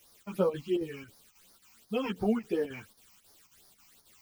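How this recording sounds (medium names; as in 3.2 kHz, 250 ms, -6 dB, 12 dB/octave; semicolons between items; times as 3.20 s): a quantiser's noise floor 10-bit, dither triangular; phasing stages 8, 2.8 Hz, lowest notch 460–2700 Hz; chopped level 3.7 Hz, depth 60%, duty 80%; a shimmering, thickened sound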